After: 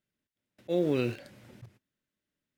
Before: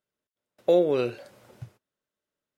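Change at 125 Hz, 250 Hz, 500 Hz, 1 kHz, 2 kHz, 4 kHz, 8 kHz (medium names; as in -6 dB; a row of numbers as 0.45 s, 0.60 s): +2.5 dB, -1.5 dB, -8.5 dB, -9.5 dB, -0.5 dB, -3.5 dB, no reading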